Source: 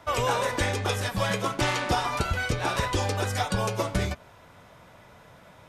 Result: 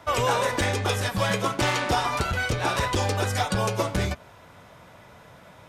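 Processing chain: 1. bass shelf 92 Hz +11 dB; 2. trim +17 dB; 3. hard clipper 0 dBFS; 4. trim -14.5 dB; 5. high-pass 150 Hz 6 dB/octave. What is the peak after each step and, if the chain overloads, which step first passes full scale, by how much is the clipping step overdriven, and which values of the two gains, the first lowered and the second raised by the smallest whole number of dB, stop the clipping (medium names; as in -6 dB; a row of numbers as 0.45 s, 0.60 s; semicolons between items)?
-9.0 dBFS, +8.0 dBFS, 0.0 dBFS, -14.5 dBFS, -11.5 dBFS; step 2, 8.0 dB; step 2 +9 dB, step 4 -6.5 dB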